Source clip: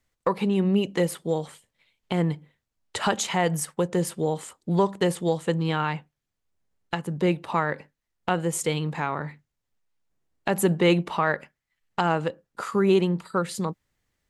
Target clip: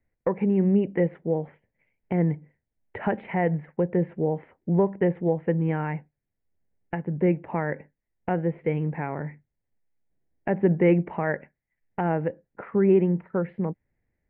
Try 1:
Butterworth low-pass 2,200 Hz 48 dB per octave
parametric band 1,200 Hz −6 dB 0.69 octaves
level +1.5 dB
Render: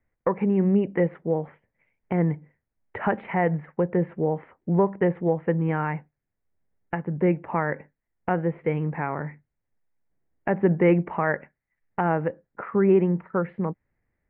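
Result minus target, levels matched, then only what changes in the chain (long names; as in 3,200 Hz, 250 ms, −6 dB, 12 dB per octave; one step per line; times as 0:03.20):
1,000 Hz band +3.0 dB
change: parametric band 1,200 Hz −15.5 dB 0.69 octaves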